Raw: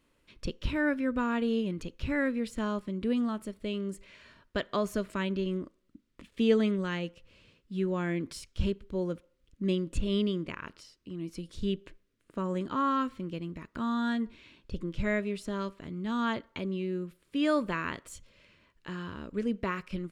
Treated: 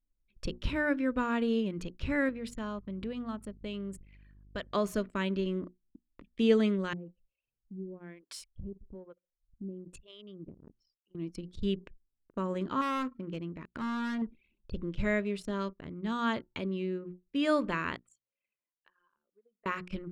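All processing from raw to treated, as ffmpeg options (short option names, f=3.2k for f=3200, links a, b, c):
-filter_complex "[0:a]asettb=1/sr,asplit=3[a][b][c];[a]atrim=end=2.294[d];[b]atrim=start=2.29:end=4.75,asetpts=PTS-STARTPTS,afade=t=in:d=0.004:c=qsin,afade=t=out:st=2.456:d=0.004:c=qsin,equalizer=f=330:t=o:w=0.77:g=-5,acompressor=threshold=-35dB:ratio=2:attack=3.2:release=140:knee=1:detection=peak,aeval=exprs='val(0)+0.00224*(sin(2*PI*50*n/s)+sin(2*PI*2*50*n/s)/2+sin(2*PI*3*50*n/s)/3+sin(2*PI*4*50*n/s)/4+sin(2*PI*5*50*n/s)/5)':c=same[e];[c]atrim=start=4.746[f];[d][e]acrossfade=d=0.004:c1=hsin:c2=qsin[g];[g][f]acrossfade=d=0.004:c1=qsin:c2=hsin,asettb=1/sr,asplit=3[h][i][j];[h]atrim=end=6.934[k];[i]atrim=start=6.93:end=11.15,asetpts=PTS-STARTPTS,afade=t=in:d=0.004:c=qsin,afade=t=out:st=4.216:d=0.004:c=qsin,acompressor=threshold=-38dB:ratio=3:attack=3.2:release=140:knee=1:detection=peak,acrossover=split=520[l][m];[l]aeval=exprs='val(0)*(1-1/2+1/2*cos(2*PI*1.1*n/s))':c=same[n];[m]aeval=exprs='val(0)*(1-1/2-1/2*cos(2*PI*1.1*n/s))':c=same[o];[n][o]amix=inputs=2:normalize=0[p];[j]atrim=start=11.146[q];[k][p]acrossfade=d=0.004:c1=hsin:c2=qsin[r];[r][q]acrossfade=d=0.004:c1=qsin:c2=hsin,asettb=1/sr,asplit=3[s][t][u];[s]atrim=end=12.814[v];[t]atrim=start=12.81:end=14.22,asetpts=PTS-STARTPTS,afade=t=in:d=0.004:c=qsin,afade=t=out:st=1.406:d=0.004:c=qsin,highpass=f=76:p=1,adynamicequalizer=threshold=0.00251:dfrequency=3400:dqfactor=1.4:tfrequency=3400:tqfactor=1.4:attack=5:release=100:ratio=0.375:range=3:mode=cutabove:tftype=bell,asoftclip=type=hard:threshold=-29.5dB[w];[u]atrim=start=14.216[x];[v][w]acrossfade=d=0.004:c1=hsin:c2=qsin[y];[y][x]acrossfade=d=0.004:c1=qsin:c2=hsin,asettb=1/sr,asplit=3[z][aa][ab];[z]atrim=end=17.964[ac];[aa]atrim=start=17.96:end=19.66,asetpts=PTS-STARTPTS,afade=t=in:d=0.004:c=qsin,afade=t=out:st=1.696:d=0.004:c=qsin,acompressor=threshold=-50dB:ratio=3:attack=3.2:release=140:knee=1:detection=peak,highpass=630[ad];[ab]atrim=start=19.656[ae];[ac][ad]acrossfade=d=0.004:c1=hsin:c2=qsin[af];[af][ae]acrossfade=d=0.004:c1=qsin:c2=hsin,bandreject=f=60:t=h:w=6,bandreject=f=120:t=h:w=6,bandreject=f=180:t=h:w=6,bandreject=f=240:t=h:w=6,bandreject=f=300:t=h:w=6,bandreject=f=360:t=h:w=6,anlmdn=0.0158"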